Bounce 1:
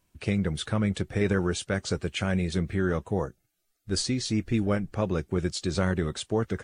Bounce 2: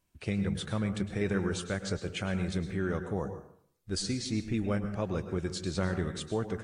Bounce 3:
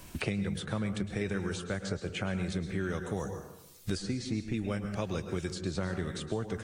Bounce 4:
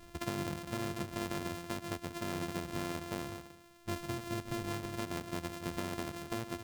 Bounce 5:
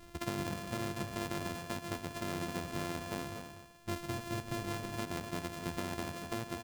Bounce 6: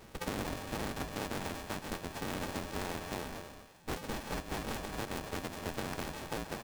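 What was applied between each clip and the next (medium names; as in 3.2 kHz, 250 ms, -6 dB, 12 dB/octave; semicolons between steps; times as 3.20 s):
plate-style reverb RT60 0.61 s, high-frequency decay 0.6×, pre-delay 95 ms, DRR 8.5 dB; trim -5.5 dB
three bands compressed up and down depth 100%; trim -2.5 dB
sorted samples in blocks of 128 samples; trim -5 dB
delay 245 ms -8.5 dB
cycle switcher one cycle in 2, inverted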